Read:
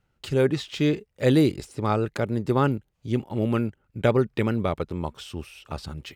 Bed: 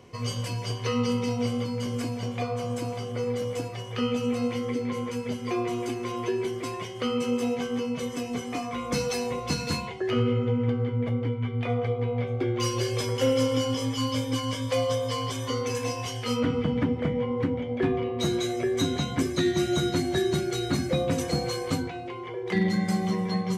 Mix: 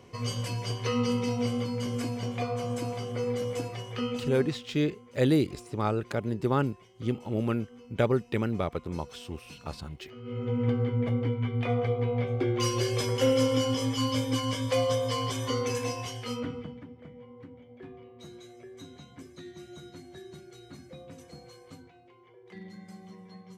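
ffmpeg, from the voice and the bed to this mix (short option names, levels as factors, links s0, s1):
-filter_complex "[0:a]adelay=3950,volume=0.596[s0];[1:a]volume=9.44,afade=t=out:st=3.74:d=0.93:silence=0.1,afade=t=in:st=10.22:d=0.47:silence=0.0891251,afade=t=out:st=15.64:d=1.17:silence=0.0944061[s1];[s0][s1]amix=inputs=2:normalize=0"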